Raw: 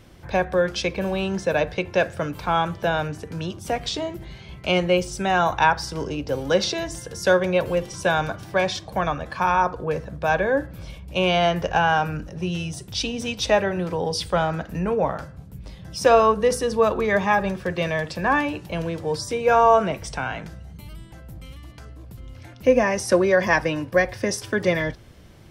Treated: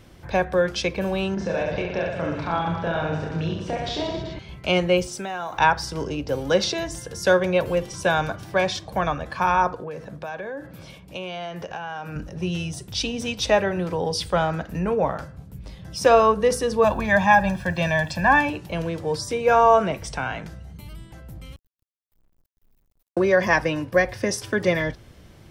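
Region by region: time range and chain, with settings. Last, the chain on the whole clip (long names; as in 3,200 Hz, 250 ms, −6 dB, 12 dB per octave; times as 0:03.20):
0:01.34–0:04.39: downward compressor 4 to 1, threshold −24 dBFS + high-frequency loss of the air 140 metres + reverse bouncing-ball delay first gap 30 ms, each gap 1.3×, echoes 6, each echo −2 dB
0:05.06–0:05.57: high-pass filter 190 Hz + downward compressor 5 to 1, threshold −27 dBFS + background noise pink −61 dBFS
0:09.75–0:12.16: high-pass filter 140 Hz + downward compressor 5 to 1, threshold −30 dBFS
0:16.84–0:18.50: comb filter 1.2 ms, depth 83% + bit-depth reduction 10 bits, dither none
0:21.56–0:23.17: inverse Chebyshev band-stop filter 120–6,800 Hz, stop band 80 dB + log-companded quantiser 6 bits
whole clip: no processing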